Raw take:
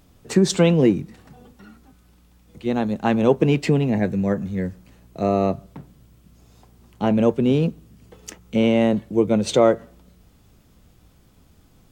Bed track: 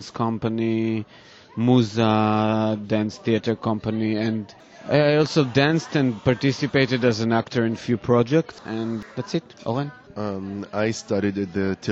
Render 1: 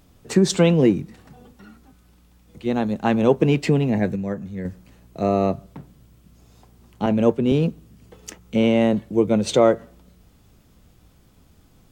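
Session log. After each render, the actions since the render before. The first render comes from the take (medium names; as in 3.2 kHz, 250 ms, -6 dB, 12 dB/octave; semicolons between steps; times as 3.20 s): 4.16–4.65 s: gain -5.5 dB; 7.06–7.52 s: three bands expanded up and down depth 70%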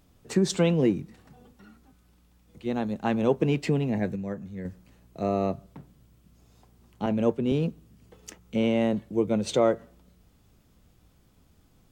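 trim -6.5 dB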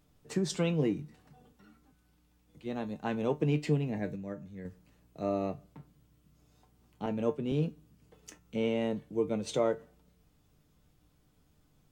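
feedback comb 150 Hz, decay 0.19 s, harmonics all, mix 70%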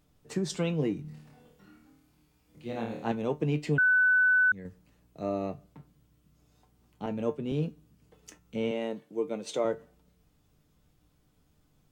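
1.02–3.12 s: flutter echo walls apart 4.5 m, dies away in 0.64 s; 3.78–4.52 s: bleep 1.5 kHz -19.5 dBFS; 8.71–9.65 s: high-pass 260 Hz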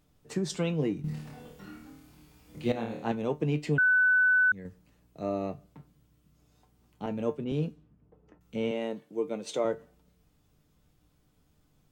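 1.04–2.72 s: gain +10 dB; 7.44–8.41 s: level-controlled noise filter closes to 720 Hz, open at -28 dBFS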